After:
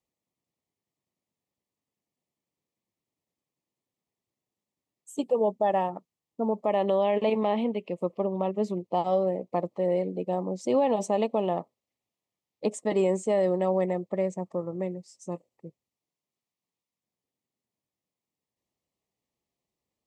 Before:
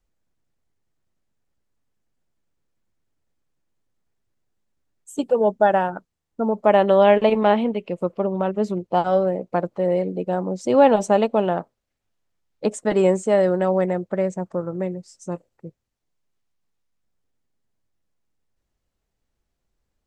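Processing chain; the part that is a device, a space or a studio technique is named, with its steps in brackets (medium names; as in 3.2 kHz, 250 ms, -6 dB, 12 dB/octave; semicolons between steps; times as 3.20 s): PA system with an anti-feedback notch (high-pass 140 Hz; Butterworth band-stop 1.5 kHz, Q 2.6; peak limiter -10 dBFS, peak gain reduction 7 dB); trim -5 dB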